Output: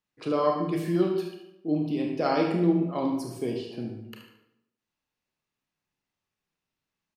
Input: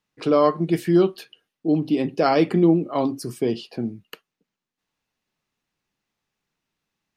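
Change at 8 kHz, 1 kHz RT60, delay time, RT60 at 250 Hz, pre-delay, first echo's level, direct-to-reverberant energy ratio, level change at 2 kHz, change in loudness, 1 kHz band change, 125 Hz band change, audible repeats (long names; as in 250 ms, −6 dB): −6.5 dB, 0.80 s, 74 ms, 0.90 s, 28 ms, −9.5 dB, 0.5 dB, −5.5 dB, −6.0 dB, −5.5 dB, −5.5 dB, 1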